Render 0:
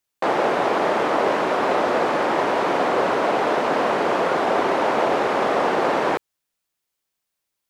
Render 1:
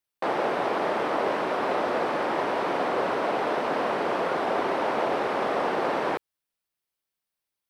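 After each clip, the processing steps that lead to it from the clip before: bell 6900 Hz -6 dB 0.33 oct; gain -6 dB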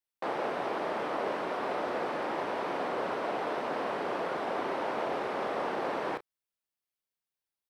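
doubler 33 ms -12 dB; gain -7 dB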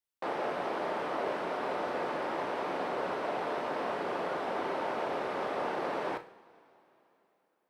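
two-slope reverb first 0.54 s, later 3.7 s, from -18 dB, DRR 9.5 dB; gain -1.5 dB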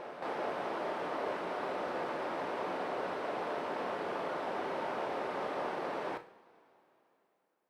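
reverse echo 0.391 s -8 dB; gain -3.5 dB

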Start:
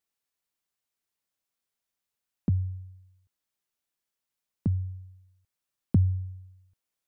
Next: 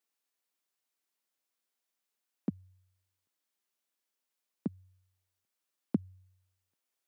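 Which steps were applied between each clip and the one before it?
HPF 210 Hz 24 dB/oct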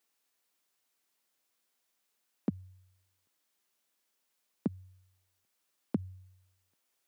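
limiter -27 dBFS, peak gain reduction 10 dB; gain +7 dB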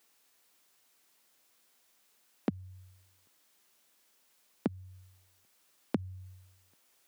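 compressor 2:1, threshold -46 dBFS, peak gain reduction 11.5 dB; gain +10 dB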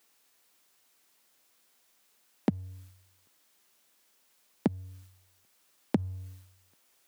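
sample leveller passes 1; gain +3 dB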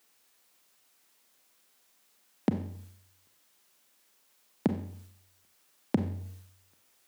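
Schroeder reverb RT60 0.61 s, combs from 30 ms, DRR 7 dB

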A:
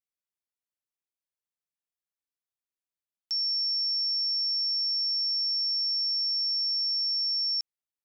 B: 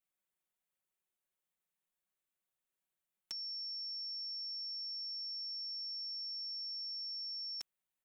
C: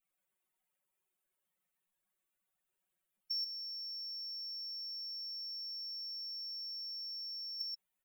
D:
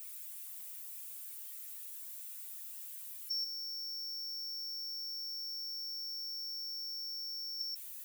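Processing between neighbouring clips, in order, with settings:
bell 5100 Hz -12.5 dB 0.48 oct; comb 5.4 ms, depth 88%; gain +1.5 dB
spectral contrast raised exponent 2.4; sample leveller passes 1; echo 0.13 s -5 dB; gain +4.5 dB
switching spikes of -43 dBFS

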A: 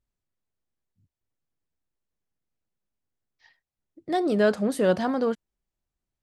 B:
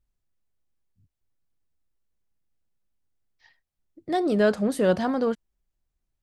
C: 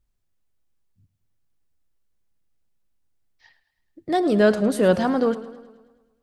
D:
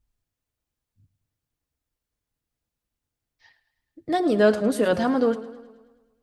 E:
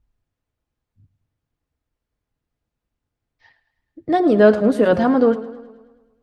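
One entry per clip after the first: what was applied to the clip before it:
low shelf 70 Hz +10.5 dB
warbling echo 0.106 s, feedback 57%, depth 83 cents, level -15.5 dB; gain +3.5 dB
notch comb 190 Hz
LPF 1700 Hz 6 dB/oct; gain +6.5 dB

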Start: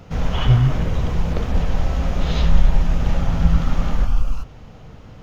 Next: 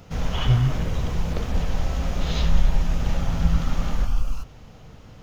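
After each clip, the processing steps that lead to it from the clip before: high shelf 4200 Hz +8.5 dB; gain -4.5 dB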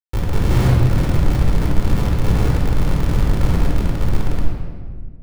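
Schmitt trigger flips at -21 dBFS; shoebox room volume 2000 m³, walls mixed, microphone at 4.3 m; gain -2.5 dB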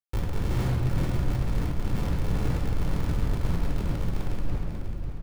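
reverse; compressor, threshold -19 dBFS, peak gain reduction 13 dB; reverse; feedback echo 0.543 s, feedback 40%, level -8.5 dB; gain -3 dB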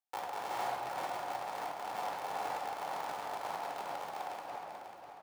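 resonant high-pass 770 Hz, resonance Q 5.1; gain -4 dB

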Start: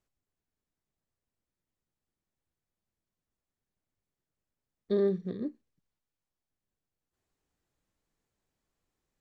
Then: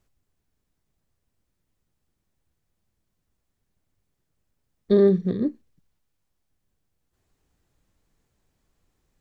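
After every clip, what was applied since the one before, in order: low shelf 160 Hz +8 dB; gain +8.5 dB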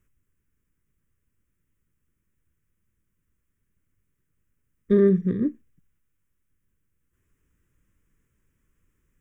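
fixed phaser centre 1800 Hz, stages 4; gain +2 dB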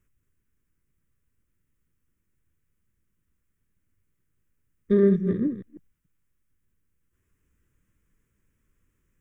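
reverse delay 0.148 s, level -8 dB; gain -1.5 dB

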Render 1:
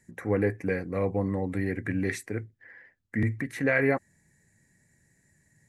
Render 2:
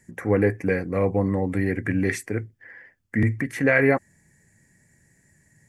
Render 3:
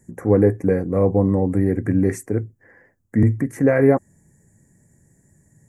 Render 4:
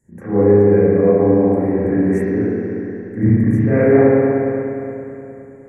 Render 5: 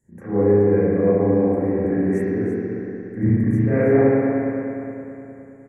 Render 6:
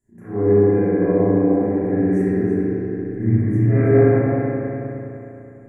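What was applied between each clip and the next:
notch 3900 Hz, Q 7.8; gain +5.5 dB
EQ curve 420 Hz 0 dB, 1100 Hz -5 dB, 3500 Hz -25 dB, 6800 Hz -4 dB; gain +5.5 dB
reverb RT60 3.2 s, pre-delay 34 ms, DRR -16 dB; gain -11.5 dB
echo 0.328 s -11 dB; gain -4.5 dB
shoebox room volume 1500 m³, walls mixed, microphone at 3.1 m; gain -6.5 dB

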